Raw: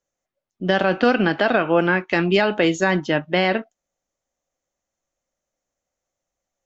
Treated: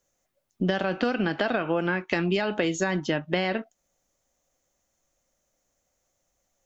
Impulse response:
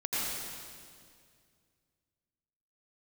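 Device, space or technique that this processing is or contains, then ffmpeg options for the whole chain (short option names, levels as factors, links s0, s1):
ASMR close-microphone chain: -af "lowshelf=f=220:g=4,acompressor=threshold=0.0398:ratio=6,highshelf=f=6200:g=7.5,volume=1.78"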